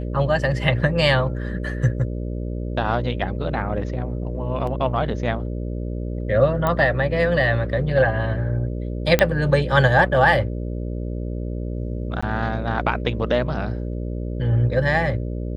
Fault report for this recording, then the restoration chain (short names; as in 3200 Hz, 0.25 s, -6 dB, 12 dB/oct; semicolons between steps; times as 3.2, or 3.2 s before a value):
buzz 60 Hz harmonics 10 -27 dBFS
4.67 gap 2.9 ms
6.67 pop -9 dBFS
9.19 pop -2 dBFS
12.21–12.22 gap 15 ms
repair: de-click; de-hum 60 Hz, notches 10; interpolate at 4.67, 2.9 ms; interpolate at 12.21, 15 ms